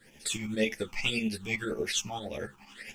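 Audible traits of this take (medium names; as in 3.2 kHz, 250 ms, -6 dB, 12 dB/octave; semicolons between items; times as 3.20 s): phasing stages 8, 1.8 Hz, lowest notch 470–1300 Hz; a quantiser's noise floor 12-bit, dither none; tremolo saw up 11 Hz, depth 65%; a shimmering, thickened sound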